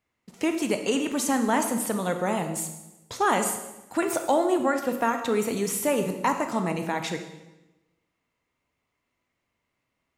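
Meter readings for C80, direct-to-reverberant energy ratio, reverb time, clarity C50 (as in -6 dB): 10.0 dB, 6.0 dB, 1.0 s, 8.0 dB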